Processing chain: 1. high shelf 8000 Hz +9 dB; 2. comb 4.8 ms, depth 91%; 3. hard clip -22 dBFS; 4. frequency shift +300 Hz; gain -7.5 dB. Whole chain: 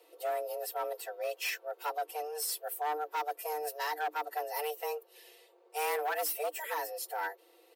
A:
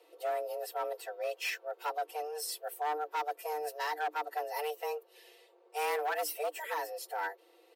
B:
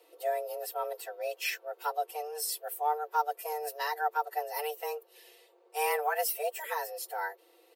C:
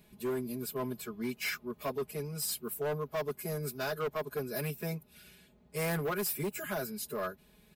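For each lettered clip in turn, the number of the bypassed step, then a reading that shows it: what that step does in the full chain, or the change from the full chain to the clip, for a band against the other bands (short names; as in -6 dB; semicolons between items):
1, 8 kHz band -4.0 dB; 3, distortion -10 dB; 4, 250 Hz band +22.0 dB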